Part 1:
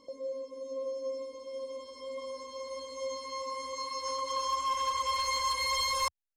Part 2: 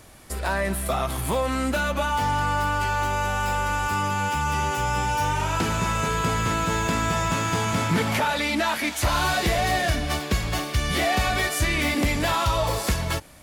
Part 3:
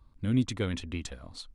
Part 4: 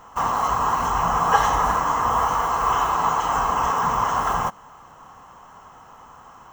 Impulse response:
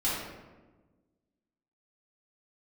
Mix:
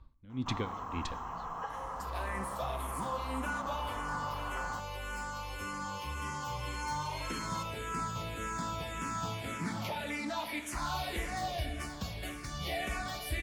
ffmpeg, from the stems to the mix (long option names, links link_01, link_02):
-filter_complex "[0:a]adelay=1550,volume=-15dB[link_01];[1:a]asplit=2[link_02][link_03];[link_03]afreqshift=-1.8[link_04];[link_02][link_04]amix=inputs=2:normalize=1,adelay=1700,volume=-12.5dB,asplit=2[link_05][link_06];[link_06]volume=-15.5dB[link_07];[2:a]lowpass=4300,aeval=exprs='val(0)*pow(10,-26*(0.5-0.5*cos(2*PI*1.9*n/s))/20)':channel_layout=same,volume=2dB,asplit=2[link_08][link_09];[link_09]volume=-22.5dB[link_10];[3:a]lowpass=frequency=2800:poles=1,acompressor=threshold=-26dB:ratio=2.5,adelay=300,volume=-14dB[link_11];[4:a]atrim=start_sample=2205[link_12];[link_07][link_10]amix=inputs=2:normalize=0[link_13];[link_13][link_12]afir=irnorm=-1:irlink=0[link_14];[link_01][link_05][link_08][link_11][link_14]amix=inputs=5:normalize=0"